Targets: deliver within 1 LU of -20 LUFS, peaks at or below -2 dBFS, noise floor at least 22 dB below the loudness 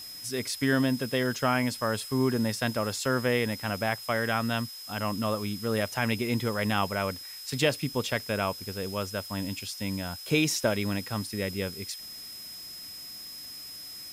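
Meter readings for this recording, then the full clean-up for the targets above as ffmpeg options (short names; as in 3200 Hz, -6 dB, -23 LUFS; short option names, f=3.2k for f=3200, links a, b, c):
steady tone 5100 Hz; tone level -41 dBFS; noise floor -43 dBFS; noise floor target -52 dBFS; loudness -29.5 LUFS; peak -13.0 dBFS; loudness target -20.0 LUFS
-> -af "bandreject=f=5.1k:w=30"
-af "afftdn=nr=9:nf=-43"
-af "volume=9.5dB"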